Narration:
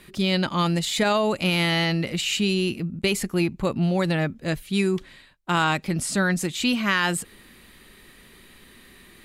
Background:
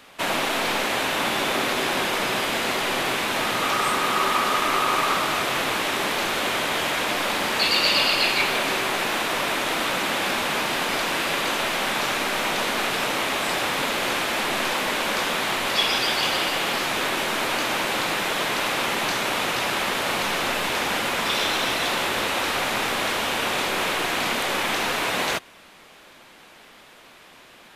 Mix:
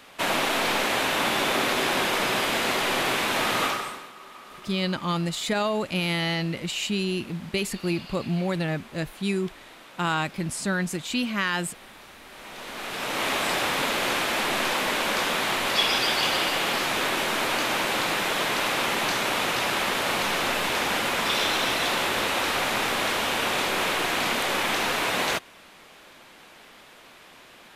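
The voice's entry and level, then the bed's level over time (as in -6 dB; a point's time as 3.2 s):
4.50 s, -4.0 dB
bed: 3.64 s -0.5 dB
4.13 s -23.5 dB
12.2 s -23.5 dB
13.27 s -1 dB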